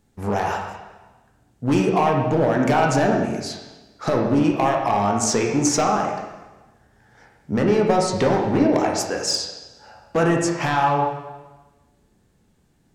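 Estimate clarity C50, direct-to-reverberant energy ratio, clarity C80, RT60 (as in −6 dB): 3.5 dB, 0.0 dB, 5.5 dB, 1.2 s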